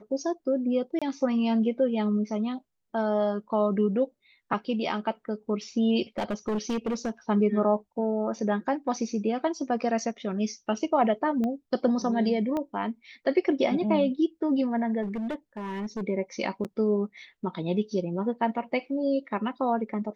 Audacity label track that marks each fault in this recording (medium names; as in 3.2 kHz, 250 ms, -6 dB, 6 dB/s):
0.990000	1.020000	dropout 26 ms
6.180000	7.100000	clipped -24.5 dBFS
11.440000	11.440000	pop -20 dBFS
12.570000	12.570000	pop -19 dBFS
15.020000	16.030000	clipped -28.5 dBFS
16.640000	16.650000	dropout 8 ms